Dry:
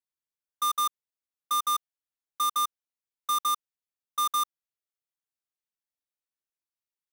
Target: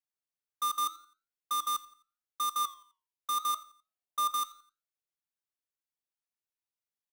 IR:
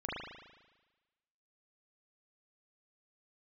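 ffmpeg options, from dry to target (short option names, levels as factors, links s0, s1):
-filter_complex "[0:a]flanger=delay=7.8:depth=3:regen=84:speed=0.82:shape=sinusoidal,asettb=1/sr,asplit=3[s0][s1][s2];[s0]atrim=end=3.544[s3];[s1]atrim=start=3.54:end=4.31,asetpts=PTS-STARTPTS,afade=t=in:d=0.004:c=qsin,afade=t=out:st=0.766:d=0.004:c=qsin,equalizer=f=670:t=o:w=0.49:g=12[s4];[s2]atrim=start=4.306[s5];[s3][s4]acrossfade=d=0.004:c1=hsin:c2=qsin[s6];[s6][s5]acrossfade=d=0.004:c1=qsin:c2=hsin,aecho=1:1:86|172|258:0.1|0.038|0.0144"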